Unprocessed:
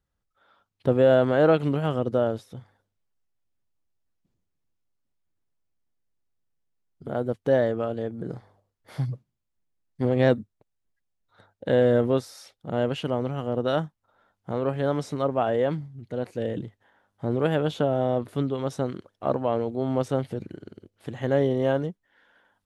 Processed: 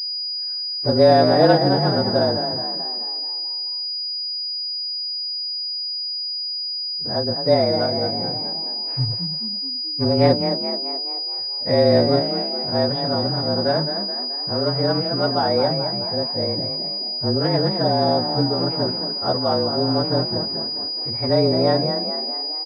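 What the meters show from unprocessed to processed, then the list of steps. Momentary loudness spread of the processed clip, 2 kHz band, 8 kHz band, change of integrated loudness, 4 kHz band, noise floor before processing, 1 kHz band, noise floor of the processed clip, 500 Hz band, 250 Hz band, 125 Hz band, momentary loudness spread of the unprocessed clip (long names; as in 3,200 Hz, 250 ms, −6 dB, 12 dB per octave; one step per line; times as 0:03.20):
7 LU, +3.5 dB, can't be measured, +5.5 dB, +24.5 dB, −80 dBFS, +9.0 dB, −27 dBFS, +4.5 dB, +5.5 dB, +5.0 dB, 16 LU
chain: partials spread apart or drawn together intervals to 109%
echo with shifted repeats 215 ms, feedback 55%, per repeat +47 Hz, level −8 dB
switching amplifier with a slow clock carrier 4,900 Hz
level +5.5 dB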